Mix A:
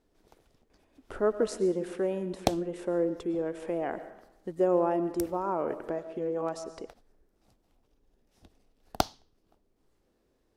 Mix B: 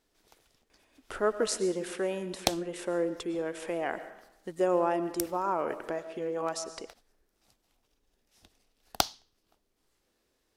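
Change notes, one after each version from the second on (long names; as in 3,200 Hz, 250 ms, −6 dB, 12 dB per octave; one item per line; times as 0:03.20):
speech +3.0 dB
master: add tilt shelving filter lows −7 dB, about 1,100 Hz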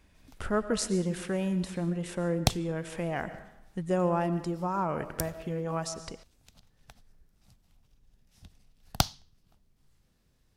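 speech: entry −0.70 s
master: add low shelf with overshoot 230 Hz +13.5 dB, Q 1.5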